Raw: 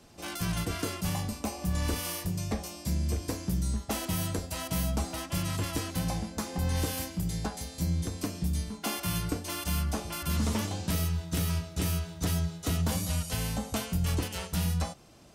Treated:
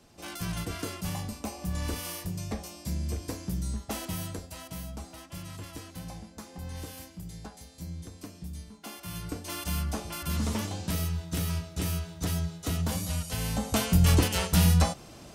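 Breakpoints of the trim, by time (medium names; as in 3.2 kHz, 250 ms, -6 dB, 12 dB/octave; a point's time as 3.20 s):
4.01 s -2.5 dB
4.87 s -10 dB
8.98 s -10 dB
9.53 s -1 dB
13.34 s -1 dB
13.94 s +8 dB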